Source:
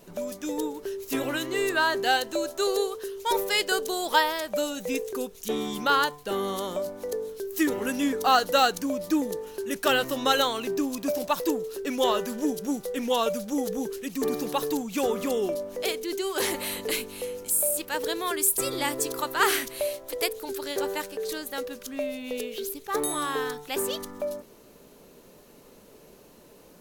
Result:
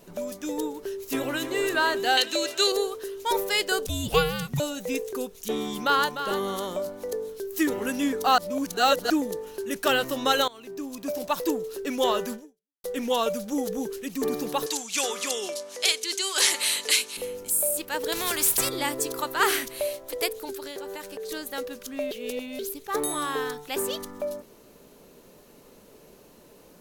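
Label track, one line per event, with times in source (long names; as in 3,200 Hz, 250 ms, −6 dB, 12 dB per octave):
1.060000	1.640000	delay throw 300 ms, feedback 60%, level −10 dB
2.170000	2.720000	meter weighting curve D
3.860000	4.600000	frequency shifter −450 Hz
5.680000	6.190000	delay throw 300 ms, feedback 20%, level −9.5 dB
8.380000	9.100000	reverse
10.480000	11.420000	fade in, from −20.5 dB
12.340000	12.840000	fade out exponential
14.660000	17.170000	meter weighting curve ITU-R 468
18.120000	18.690000	every bin compressed towards the loudest bin 2 to 1
20.500000	21.310000	downward compressor 12 to 1, threshold −32 dBFS
22.110000	22.590000	reverse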